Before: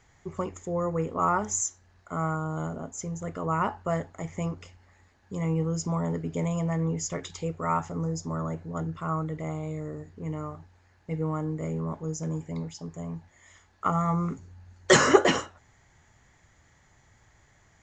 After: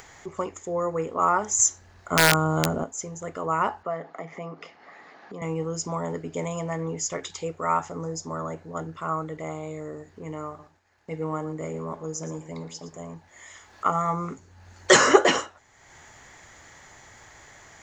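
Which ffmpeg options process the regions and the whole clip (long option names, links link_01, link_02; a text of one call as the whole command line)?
ffmpeg -i in.wav -filter_complex "[0:a]asettb=1/sr,asplit=3[link_01][link_02][link_03];[link_01]atrim=end=1.594[link_04];[link_02]atrim=start=1.59:end=2.84,asetpts=PTS-STARTPTS,afade=type=in:duration=0.004:curve=qsin,afade=type=out:start_time=1.246:duration=0.004:curve=qsin,lowshelf=frequency=240:gain=9.5,acontrast=42,aeval=exprs='(mod(3.55*val(0)+1,2)-1)/3.55':channel_layout=same[link_05];[link_03]atrim=start=2.836[link_06];[link_04][link_05]acrossfade=duration=0.004:curve1=hsin:curve2=qsin[link_07];[link_07][link_06]acrossfade=duration=0.004:curve1=qsin:curve2=hsin,asettb=1/sr,asplit=3[link_08][link_09][link_10];[link_08]atrim=end=3.834[link_11];[link_09]atrim=start=3.83:end=5.42,asetpts=PTS-STARTPTS,afade=type=in:duration=0.004:curve=qsin,afade=type=out:start_time=1.586:duration=0.004:curve=qsin,acompressor=threshold=-40dB:ratio=2.5:attack=3.2:release=140:knee=1:detection=peak,highpass=frequency=160:width=0.5412,highpass=frequency=160:width=1.3066,equalizer=frequency=160:width_type=q:width=4:gain=8,equalizer=frequency=290:width_type=q:width=4:gain=5,equalizer=frequency=460:width_type=q:width=4:gain=6,equalizer=frequency=710:width_type=q:width=4:gain=9,equalizer=frequency=1200:width_type=q:width=4:gain=8,equalizer=frequency=2000:width_type=q:width=4:gain=5,lowpass=frequency=5100:width=0.5412,lowpass=frequency=5100:width=1.3066[link_12];[link_10]atrim=start=5.416[link_13];[link_11][link_12]acrossfade=duration=0.004:curve1=hsin:curve2=qsin[link_14];[link_14][link_13]acrossfade=duration=0.004:curve1=qsin:curve2=hsin,asettb=1/sr,asplit=3[link_15][link_16][link_17];[link_15]atrim=end=10.474[link_18];[link_16]atrim=start=10.47:end=13.14,asetpts=PTS-STARTPTS,afade=type=in:duration=0.004:curve=qsin,afade=type=out:start_time=2.666:duration=0.004:curve=qsin,agate=range=-33dB:threshold=-52dB:ratio=3:release=100:detection=peak,aecho=1:1:115:0.211,atrim=end_sample=117747[link_19];[link_17]atrim=start=13.136[link_20];[link_18][link_19]acrossfade=duration=0.004:curve1=hsin:curve2=qsin[link_21];[link_21][link_20]acrossfade=duration=0.004:curve1=qsin:curve2=hsin,bass=frequency=250:gain=-11,treble=frequency=4000:gain=1,acompressor=mode=upward:threshold=-42dB:ratio=2.5,volume=3.5dB" out.wav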